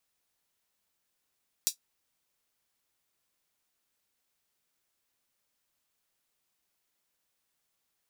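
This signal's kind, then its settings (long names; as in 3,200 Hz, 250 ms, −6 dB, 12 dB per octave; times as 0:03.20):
closed synth hi-hat, high-pass 4,900 Hz, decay 0.11 s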